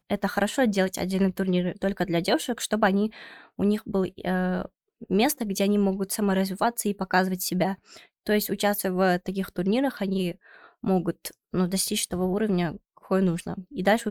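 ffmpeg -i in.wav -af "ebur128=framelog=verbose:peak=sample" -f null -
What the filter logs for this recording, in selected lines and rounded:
Integrated loudness:
  I:         -25.9 LUFS
  Threshold: -36.2 LUFS
Loudness range:
  LRA:         1.8 LU
  Threshold: -46.3 LUFS
  LRA low:   -27.2 LUFS
  LRA high:  -25.4 LUFS
Sample peak:
  Peak:       -9.2 dBFS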